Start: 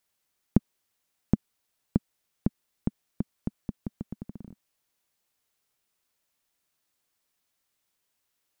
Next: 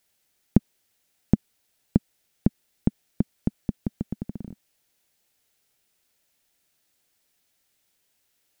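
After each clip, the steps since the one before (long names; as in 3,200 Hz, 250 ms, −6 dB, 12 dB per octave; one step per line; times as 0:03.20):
parametric band 1,100 Hz −7.5 dB 0.48 octaves
in parallel at +2 dB: brickwall limiter −13 dBFS, peak gain reduction 8 dB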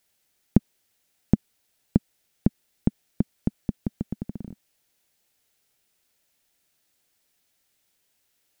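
no processing that can be heard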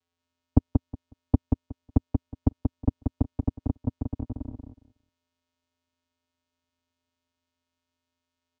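channel vocoder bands 4, square 85.9 Hz
repeating echo 183 ms, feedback 17%, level −4 dB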